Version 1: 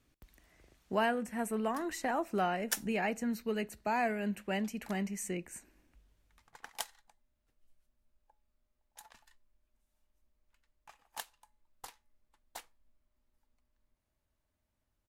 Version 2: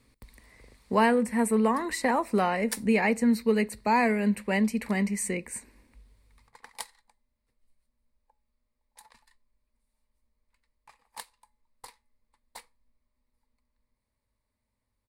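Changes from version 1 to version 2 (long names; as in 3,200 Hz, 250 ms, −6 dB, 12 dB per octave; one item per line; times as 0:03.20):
speech +7.5 dB
master: add EQ curve with evenly spaced ripples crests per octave 0.94, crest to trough 9 dB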